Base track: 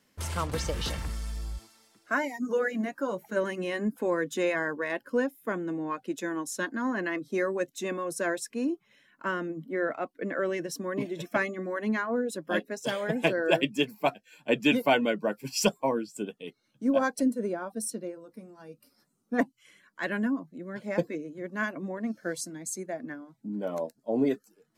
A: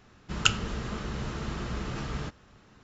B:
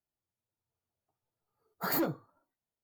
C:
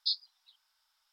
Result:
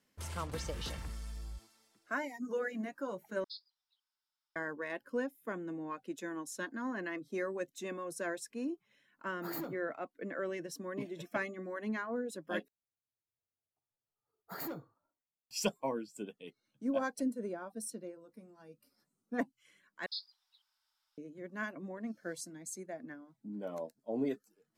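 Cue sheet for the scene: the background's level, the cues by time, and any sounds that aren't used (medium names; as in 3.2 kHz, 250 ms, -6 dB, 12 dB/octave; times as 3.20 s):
base track -8.5 dB
3.44 s: replace with C -17 dB
7.61 s: add B -11 dB
12.68 s: replace with B -11 dB
20.06 s: replace with C -6.5 dB + peak limiter -23 dBFS
not used: A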